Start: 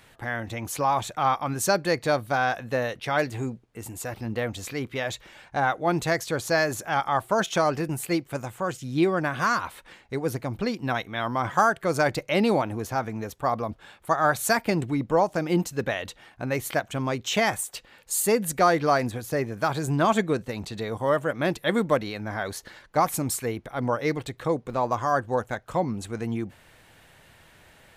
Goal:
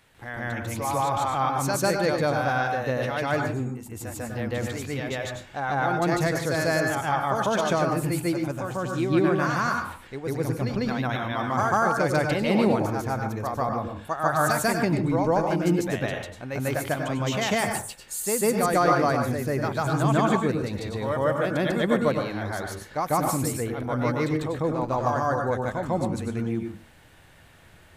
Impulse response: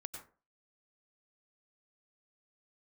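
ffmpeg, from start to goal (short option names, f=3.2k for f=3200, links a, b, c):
-filter_complex "[0:a]asplit=2[a][b];[1:a]atrim=start_sample=2205,lowshelf=f=300:g=6,adelay=147[c];[b][c]afir=irnorm=-1:irlink=0,volume=7dB[d];[a][d]amix=inputs=2:normalize=0,volume=-6dB"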